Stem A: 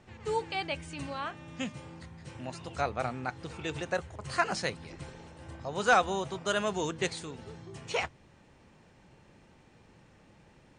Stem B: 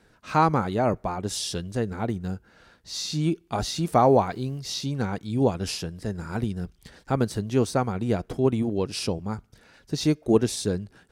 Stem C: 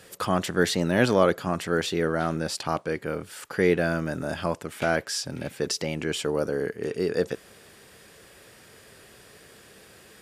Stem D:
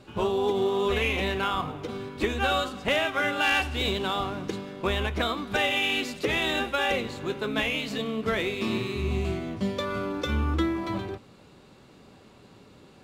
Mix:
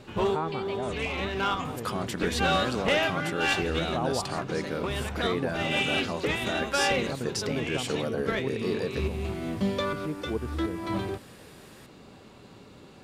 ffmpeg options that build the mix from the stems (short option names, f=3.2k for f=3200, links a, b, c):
-filter_complex "[0:a]acompressor=threshold=-39dB:ratio=6,volume=1.5dB[a];[1:a]lowpass=2.3k,volume=-12dB,asplit=2[b][c];[2:a]alimiter=limit=-17dB:level=0:latency=1:release=112,adelay=1650,volume=-2.5dB[d];[3:a]acrossover=split=6200[e][f];[f]acompressor=threshold=-58dB:ratio=4:attack=1:release=60[g];[e][g]amix=inputs=2:normalize=0,asoftclip=type=tanh:threshold=-20dB,volume=2.5dB[h];[c]apad=whole_len=574767[i];[h][i]sidechaincompress=threshold=-45dB:ratio=3:attack=11:release=223[j];[a][b][d][j]amix=inputs=4:normalize=0"